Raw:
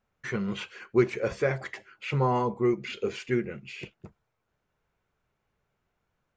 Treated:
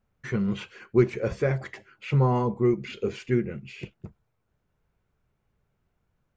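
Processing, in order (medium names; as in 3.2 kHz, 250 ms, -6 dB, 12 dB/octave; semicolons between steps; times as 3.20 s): bass shelf 310 Hz +10.5 dB; trim -2.5 dB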